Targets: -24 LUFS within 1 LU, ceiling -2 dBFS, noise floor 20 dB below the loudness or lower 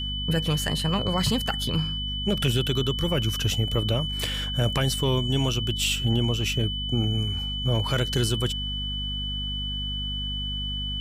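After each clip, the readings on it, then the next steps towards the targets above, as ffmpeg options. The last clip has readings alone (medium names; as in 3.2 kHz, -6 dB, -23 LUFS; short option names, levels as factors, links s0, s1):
hum 50 Hz; highest harmonic 250 Hz; hum level -30 dBFS; steady tone 3 kHz; tone level -30 dBFS; loudness -25.5 LUFS; peak level -11.0 dBFS; loudness target -24.0 LUFS
-> -af "bandreject=f=50:t=h:w=4,bandreject=f=100:t=h:w=4,bandreject=f=150:t=h:w=4,bandreject=f=200:t=h:w=4,bandreject=f=250:t=h:w=4"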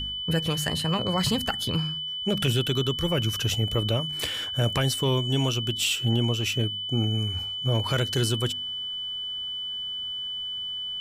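hum not found; steady tone 3 kHz; tone level -30 dBFS
-> -af "bandreject=f=3000:w=30"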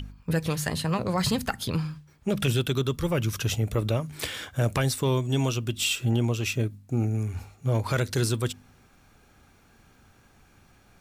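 steady tone not found; loudness -27.5 LUFS; peak level -13.5 dBFS; loudness target -24.0 LUFS
-> -af "volume=1.5"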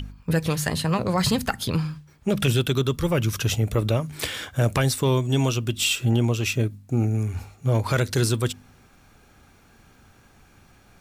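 loudness -24.0 LUFS; peak level -10.0 dBFS; noise floor -55 dBFS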